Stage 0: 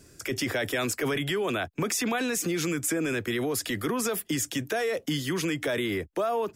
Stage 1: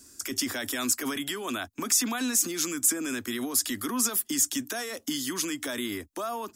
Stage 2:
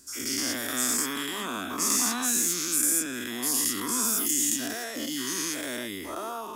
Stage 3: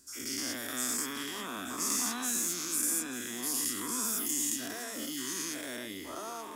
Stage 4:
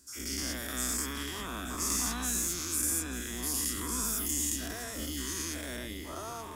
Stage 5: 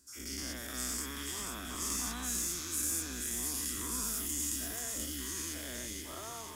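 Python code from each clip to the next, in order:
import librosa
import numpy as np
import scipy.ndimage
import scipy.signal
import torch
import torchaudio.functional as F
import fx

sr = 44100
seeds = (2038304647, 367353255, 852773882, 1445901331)

y1 = fx.curve_eq(x, sr, hz=(100.0, 150.0, 250.0, 460.0, 1100.0, 2300.0, 3700.0, 6500.0), db=(0, -10, 10, -4, 8, 2, 9, 15))
y1 = F.gain(torch.from_numpy(y1), -8.0).numpy()
y2 = fx.spec_dilate(y1, sr, span_ms=240)
y2 = F.gain(torch.from_numpy(y2), -7.5).numpy()
y3 = y2 + 10.0 ** (-11.5 / 20.0) * np.pad(y2, (int(884 * sr / 1000.0), 0))[:len(y2)]
y3 = F.gain(torch.from_numpy(y3), -6.5).numpy()
y4 = fx.octave_divider(y3, sr, octaves=2, level_db=1.0)
y5 = fx.echo_wet_highpass(y4, sr, ms=482, feedback_pct=59, hz=2300.0, wet_db=-3.5)
y5 = F.gain(torch.from_numpy(y5), -5.0).numpy()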